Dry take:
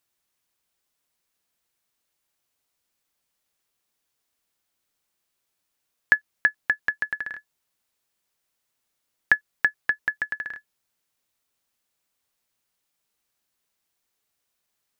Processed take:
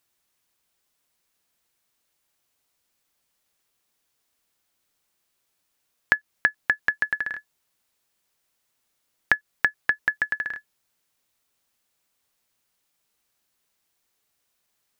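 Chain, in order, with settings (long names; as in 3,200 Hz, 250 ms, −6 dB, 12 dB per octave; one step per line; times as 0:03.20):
downward compressor 4 to 1, threshold −20 dBFS, peak gain reduction 7.5 dB
level +3.5 dB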